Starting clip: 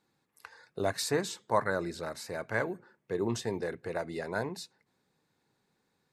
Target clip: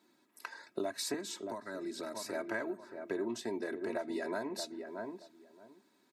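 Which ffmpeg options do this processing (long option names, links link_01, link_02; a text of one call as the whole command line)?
ffmpeg -i in.wav -filter_complex "[0:a]lowshelf=frequency=250:gain=7,aecho=1:1:3.1:0.82,asplit=2[link_01][link_02];[link_02]adelay=625,lowpass=frequency=1200:poles=1,volume=-13dB,asplit=2[link_03][link_04];[link_04]adelay=625,lowpass=frequency=1200:poles=1,volume=0.17[link_05];[link_01][link_03][link_05]amix=inputs=3:normalize=0,acompressor=threshold=-36dB:ratio=10,highpass=frequency=180:width=0.5412,highpass=frequency=180:width=1.3066,asettb=1/sr,asplit=3[link_06][link_07][link_08];[link_06]atrim=end=1.144[link_09];[link_07]atrim=start=1.14:end=2.33,asetpts=PTS-STARTPTS,afade=type=in:duration=0.004:curve=qsin,afade=type=out:start_time=1.186:duration=0.004:curve=qsin,acrossover=split=290|3000[link_10][link_11][link_12];[link_11]acompressor=threshold=-45dB:ratio=3[link_13];[link_10][link_13][link_12]amix=inputs=3:normalize=0[link_14];[link_08]atrim=start=2.326[link_15];[link_09][link_14]acrossfade=duration=0.004:curve1=hsin:curve2=qsin[link_16];[link_16][link_15]acrossfade=duration=0.004:curve1=qsin:curve2=hsin,volume=3dB" out.wav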